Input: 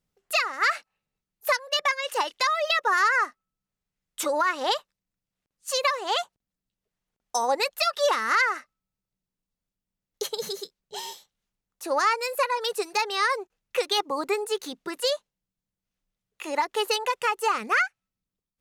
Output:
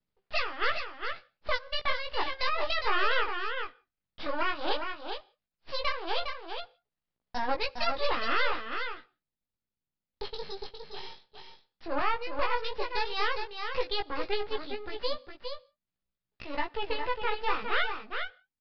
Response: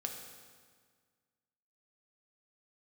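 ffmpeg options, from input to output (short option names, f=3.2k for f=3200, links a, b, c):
-filter_complex "[0:a]aeval=exprs='max(val(0),0)':c=same,asettb=1/sr,asplit=3[a][b][c];[a]atrim=end=11.854[d];[b]atrim=start=11.85:end=12.42,asetpts=PTS-STARTPTS,afade=t=in:d=0.004:c=qsin,afade=t=out:st=0.566:d=0.004:c=qsin,aemphasis=mode=reproduction:type=75fm[e];[c]atrim=start=12.416[f];[d][e]acrossfade=d=0.004:c1=hsin:c2=qsin[g];[g][f]acrossfade=d=0.004:c1=qsin:c2=hsin,asettb=1/sr,asplit=3[h][i][j];[h]atrim=end=16.594[k];[i]atrim=start=16.59:end=17.38,asetpts=PTS-STARTPTS,afade=t=in:d=0.004:c=qsin,afade=t=out:st=0.786:d=0.004:c=qsin,acrossover=split=3300[l][m];[m]acompressor=threshold=-46dB:ratio=4:attack=1:release=60[n];[l][n]amix=inputs=2:normalize=0[o];[j]atrim=start=17.376[p];[k][o]acrossfade=d=0.004:c1=hsin:c2=qsin[q];[q][p]acrossfade=d=0.004:c1=qsin:c2=hsin,flanger=delay=16:depth=5.3:speed=0.13,aecho=1:1:409:0.473,asplit=2[r][s];[1:a]atrim=start_sample=2205,afade=t=out:st=0.23:d=0.01,atrim=end_sample=10584[t];[s][t]afir=irnorm=-1:irlink=0,volume=-16dB[u];[r][u]amix=inputs=2:normalize=0,aresample=11025,aresample=44100"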